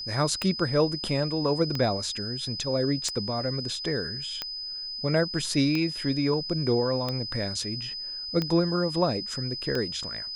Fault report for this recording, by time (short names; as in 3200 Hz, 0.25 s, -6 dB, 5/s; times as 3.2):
tick 45 rpm -15 dBFS
tone 5000 Hz -33 dBFS